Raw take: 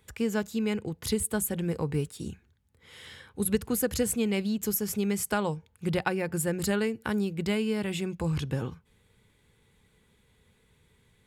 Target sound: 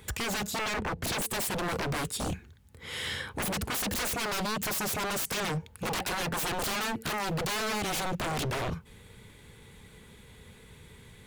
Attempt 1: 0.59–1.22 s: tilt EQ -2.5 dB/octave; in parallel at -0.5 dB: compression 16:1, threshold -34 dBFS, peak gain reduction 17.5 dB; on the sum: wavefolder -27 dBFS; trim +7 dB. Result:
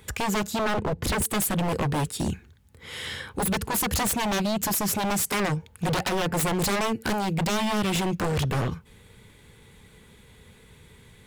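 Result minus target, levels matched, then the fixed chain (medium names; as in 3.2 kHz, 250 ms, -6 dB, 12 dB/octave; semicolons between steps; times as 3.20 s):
wavefolder: distortion -17 dB
0.59–1.22 s: tilt EQ -2.5 dB/octave; in parallel at -0.5 dB: compression 16:1, threshold -34 dBFS, peak gain reduction 17.5 dB; on the sum: wavefolder -33.5 dBFS; trim +7 dB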